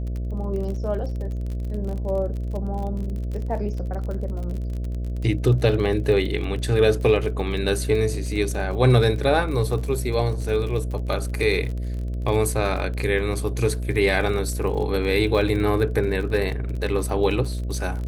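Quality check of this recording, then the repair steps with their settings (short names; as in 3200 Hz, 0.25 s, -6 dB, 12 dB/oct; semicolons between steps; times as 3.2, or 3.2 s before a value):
buzz 60 Hz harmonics 11 -27 dBFS
crackle 41/s -30 dBFS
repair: de-click; de-hum 60 Hz, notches 11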